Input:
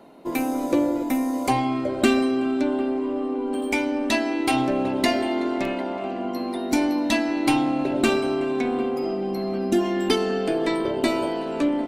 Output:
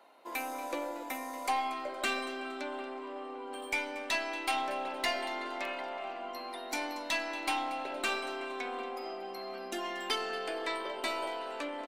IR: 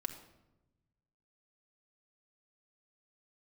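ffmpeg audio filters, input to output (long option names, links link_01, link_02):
-filter_complex "[0:a]highpass=830,aeval=exprs='(tanh(7.94*val(0)+0.15)-tanh(0.15))/7.94':channel_layout=same,aecho=1:1:233|466|699:0.158|0.0571|0.0205,asplit=2[link_01][link_02];[1:a]atrim=start_sample=2205,lowpass=5400[link_03];[link_02][link_03]afir=irnorm=-1:irlink=0,volume=-8dB[link_04];[link_01][link_04]amix=inputs=2:normalize=0,volume=-6.5dB"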